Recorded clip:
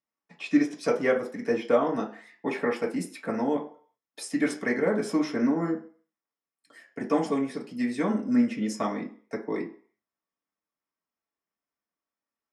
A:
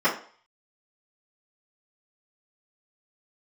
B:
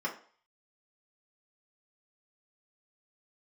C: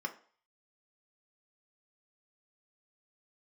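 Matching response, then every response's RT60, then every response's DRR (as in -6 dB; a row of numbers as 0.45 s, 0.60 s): B; 0.45 s, 0.45 s, 0.45 s; -14.0 dB, -4.0 dB, 2.5 dB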